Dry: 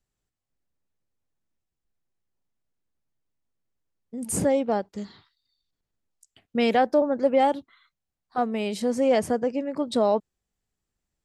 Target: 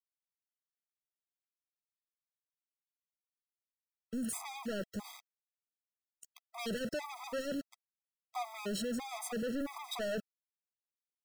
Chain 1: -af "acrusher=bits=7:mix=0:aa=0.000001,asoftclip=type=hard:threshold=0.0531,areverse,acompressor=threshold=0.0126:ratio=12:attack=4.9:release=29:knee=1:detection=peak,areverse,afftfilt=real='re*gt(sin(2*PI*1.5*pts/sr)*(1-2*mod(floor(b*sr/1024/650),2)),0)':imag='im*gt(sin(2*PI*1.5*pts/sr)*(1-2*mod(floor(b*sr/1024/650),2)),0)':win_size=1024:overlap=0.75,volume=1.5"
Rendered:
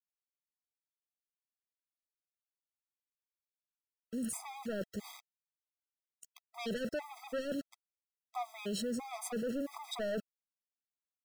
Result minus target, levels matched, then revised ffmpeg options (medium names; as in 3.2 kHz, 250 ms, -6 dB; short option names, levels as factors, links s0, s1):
hard clipper: distortion -4 dB
-af "acrusher=bits=7:mix=0:aa=0.000001,asoftclip=type=hard:threshold=0.0178,areverse,acompressor=threshold=0.0126:ratio=12:attack=4.9:release=29:knee=1:detection=peak,areverse,afftfilt=real='re*gt(sin(2*PI*1.5*pts/sr)*(1-2*mod(floor(b*sr/1024/650),2)),0)':imag='im*gt(sin(2*PI*1.5*pts/sr)*(1-2*mod(floor(b*sr/1024/650),2)),0)':win_size=1024:overlap=0.75,volume=1.5"